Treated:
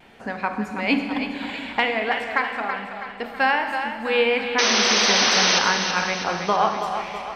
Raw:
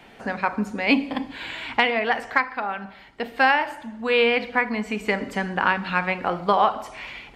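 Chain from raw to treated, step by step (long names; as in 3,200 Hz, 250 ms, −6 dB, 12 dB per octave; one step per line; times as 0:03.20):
pitch vibrato 0.34 Hz 11 cents
sound drawn into the spectrogram noise, 0:04.58–0:05.59, 340–6,300 Hz −18 dBFS
echo with a time of its own for lows and highs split 350 Hz, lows 240 ms, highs 326 ms, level −8 dB
four-comb reverb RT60 1.9 s, combs from 31 ms, DRR 7.5 dB
level −2 dB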